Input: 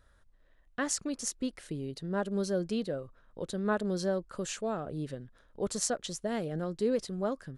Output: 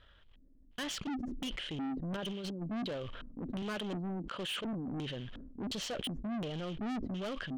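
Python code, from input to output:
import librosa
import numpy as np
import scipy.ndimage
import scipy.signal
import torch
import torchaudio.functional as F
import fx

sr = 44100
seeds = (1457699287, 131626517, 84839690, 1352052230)

y = fx.high_shelf(x, sr, hz=8400.0, db=10.5, at=(0.9, 1.51))
y = fx.over_compress(y, sr, threshold_db=-36.0, ratio=-0.5, at=(2.15, 2.61), fade=0.02)
y = fx.highpass(y, sr, hz=150.0, slope=12, at=(3.62, 4.73))
y = fx.quant_float(y, sr, bits=2)
y = fx.filter_lfo_lowpass(y, sr, shape='square', hz=1.4, low_hz=260.0, high_hz=3100.0, q=7.8)
y = 10.0 ** (-35.0 / 20.0) * np.tanh(y / 10.0 ** (-35.0 / 20.0))
y = fx.sustainer(y, sr, db_per_s=29.0)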